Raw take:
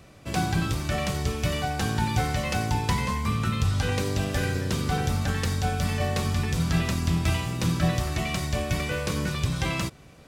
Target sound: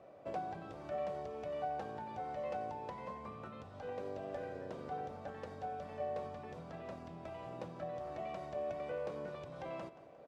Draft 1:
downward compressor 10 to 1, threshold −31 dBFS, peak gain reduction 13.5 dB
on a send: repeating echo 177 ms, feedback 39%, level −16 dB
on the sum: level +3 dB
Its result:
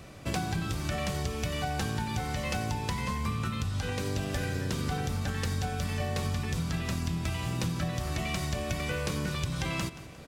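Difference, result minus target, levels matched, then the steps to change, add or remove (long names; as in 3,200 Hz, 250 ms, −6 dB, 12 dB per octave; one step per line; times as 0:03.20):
500 Hz band −9.0 dB
add after downward compressor: resonant band-pass 610 Hz, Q 2.7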